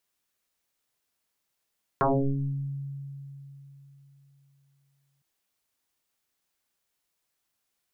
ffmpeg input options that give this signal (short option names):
-f lavfi -i "aevalsrc='0.112*pow(10,-3*t/3.64)*sin(2*PI*139*t+10*pow(10,-3*t/0.97)*sin(2*PI*0.98*139*t))':d=3.21:s=44100"